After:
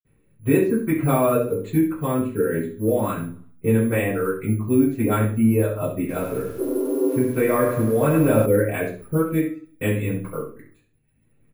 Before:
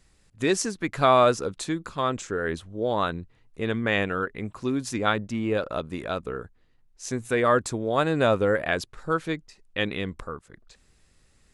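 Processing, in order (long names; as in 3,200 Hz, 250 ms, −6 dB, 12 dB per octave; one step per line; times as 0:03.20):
mu-law and A-law mismatch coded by A
reverb reduction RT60 1 s
0:06.56–0:07.10: healed spectral selection 270–1,500 Hz after
low-pass filter 3,100 Hz 24 dB per octave
low-shelf EQ 210 Hz +6 dB
mains-hum notches 60/120/180/240 Hz
repeating echo 66 ms, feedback 17%, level −11 dB
downward compressor 1.5 to 1, threshold −37 dBFS, peak gain reduction 8.5 dB
bad sample-rate conversion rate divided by 4×, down filtered, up zero stuff
convolution reverb, pre-delay 46 ms
0:05.99–0:08.46: feedback echo at a low word length 99 ms, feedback 55%, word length 9 bits, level −7.5 dB
level +9 dB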